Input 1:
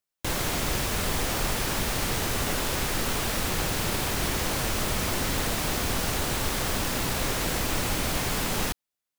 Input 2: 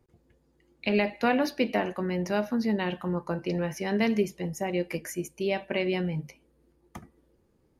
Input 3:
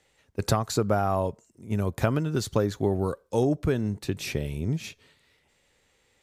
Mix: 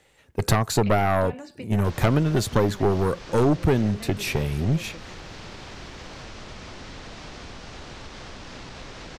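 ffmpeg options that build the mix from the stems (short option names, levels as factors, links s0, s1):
-filter_complex "[0:a]adelay=1600,volume=0.422[s0];[1:a]volume=0.422[s1];[2:a]equalizer=f=5600:w=1.1:g=-4,volume=1.26,asplit=2[s2][s3];[s3]apad=whole_len=343756[s4];[s1][s4]sidechaingate=range=0.0224:threshold=0.00112:ratio=16:detection=peak[s5];[s0][s5]amix=inputs=2:normalize=0,lowpass=f=5900:w=0.5412,lowpass=f=5900:w=1.3066,acompressor=threshold=0.00794:ratio=6,volume=1[s6];[s2][s6]amix=inputs=2:normalize=0,aeval=exprs='0.335*(cos(1*acos(clip(val(0)/0.335,-1,1)))-cos(1*PI/2))+0.15*(cos(2*acos(clip(val(0)/0.335,-1,1)))-cos(2*PI/2))+0.0531*(cos(5*acos(clip(val(0)/0.335,-1,1)))-cos(5*PI/2))':c=same"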